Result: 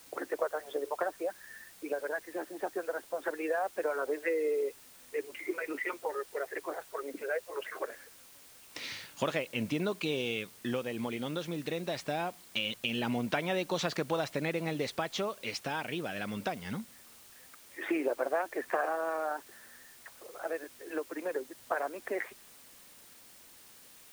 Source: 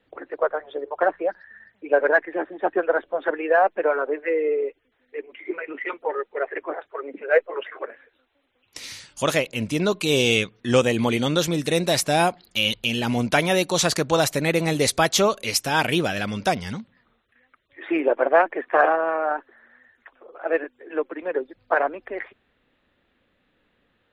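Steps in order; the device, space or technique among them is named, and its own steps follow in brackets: medium wave at night (band-pass 130–3700 Hz; compression 5:1, threshold -29 dBFS, peak gain reduction 16 dB; tremolo 0.22 Hz, depth 39%; whistle 9 kHz -65 dBFS; white noise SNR 20 dB)

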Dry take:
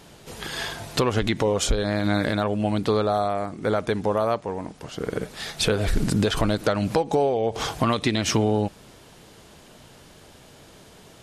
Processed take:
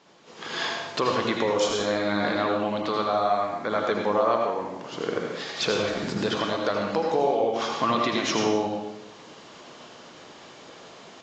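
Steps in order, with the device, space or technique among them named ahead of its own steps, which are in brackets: 2.71–3.85 s: dynamic bell 400 Hz, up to -7 dB, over -36 dBFS, Q 1.6; filmed off a television (band-pass 260–6300 Hz; peaking EQ 1.1 kHz +6 dB 0.29 oct; reverberation RT60 0.80 s, pre-delay 74 ms, DRR 1 dB; white noise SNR 35 dB; level rider gain up to 11 dB; trim -9 dB; AAC 32 kbps 16 kHz)

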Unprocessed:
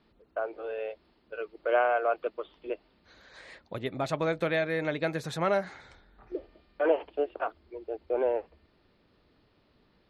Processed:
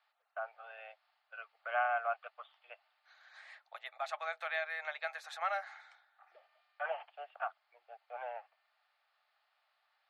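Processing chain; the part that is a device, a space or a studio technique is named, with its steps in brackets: steep high-pass 730 Hz 48 dB/octave; through cloth (treble shelf 3.1 kHz -11 dB); band-stop 980 Hz, Q 5.1; trim -1 dB

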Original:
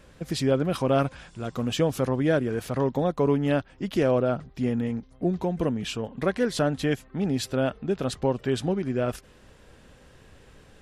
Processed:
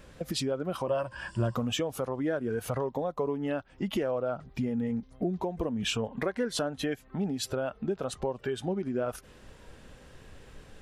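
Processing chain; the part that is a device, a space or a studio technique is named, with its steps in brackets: serial compression, leveller first (compression 1.5:1, threshold -31 dBFS, peak gain reduction 5 dB; compression 5:1, threshold -35 dBFS, peak gain reduction 12 dB); spectral noise reduction 8 dB; 0.87–1.56 s: rippled EQ curve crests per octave 1.3, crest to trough 12 dB; trim +8.5 dB

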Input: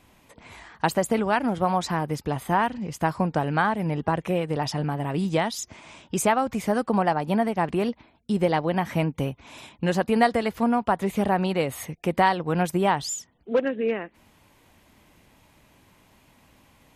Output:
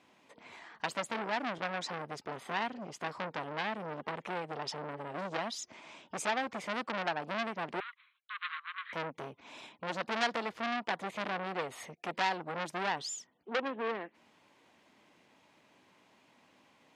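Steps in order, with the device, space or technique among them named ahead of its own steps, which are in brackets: public-address speaker with an overloaded transformer (transformer saturation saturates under 3.9 kHz; band-pass 240–6000 Hz); 7.80–8.93 s: Chebyshev band-pass 1.1–4 kHz, order 5; trim -5 dB

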